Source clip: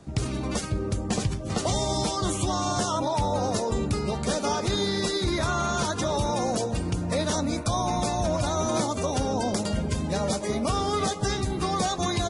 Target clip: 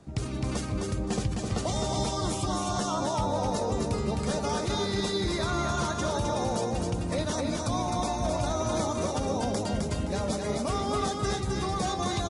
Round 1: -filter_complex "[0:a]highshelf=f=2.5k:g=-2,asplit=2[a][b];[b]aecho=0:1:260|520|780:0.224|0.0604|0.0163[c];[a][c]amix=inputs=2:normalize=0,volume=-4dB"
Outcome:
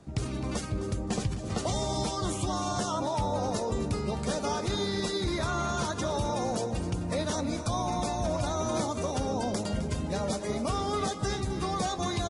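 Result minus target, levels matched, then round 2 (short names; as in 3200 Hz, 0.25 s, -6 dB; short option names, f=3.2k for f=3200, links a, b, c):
echo-to-direct -9.5 dB
-filter_complex "[0:a]highshelf=f=2.5k:g=-2,asplit=2[a][b];[b]aecho=0:1:260|520|780|1040:0.668|0.18|0.0487|0.0132[c];[a][c]amix=inputs=2:normalize=0,volume=-4dB"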